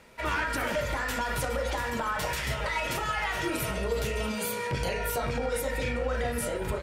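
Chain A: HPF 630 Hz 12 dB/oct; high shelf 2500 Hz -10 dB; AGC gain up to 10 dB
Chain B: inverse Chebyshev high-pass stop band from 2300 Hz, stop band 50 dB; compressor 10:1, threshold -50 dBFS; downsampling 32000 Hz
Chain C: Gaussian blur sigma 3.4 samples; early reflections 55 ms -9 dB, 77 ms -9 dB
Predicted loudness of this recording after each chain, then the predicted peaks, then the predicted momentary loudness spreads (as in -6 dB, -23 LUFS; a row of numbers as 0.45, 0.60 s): -25.5, -52.0, -31.0 LUFS; -12.0, -32.0, -16.5 dBFS; 4, 3, 2 LU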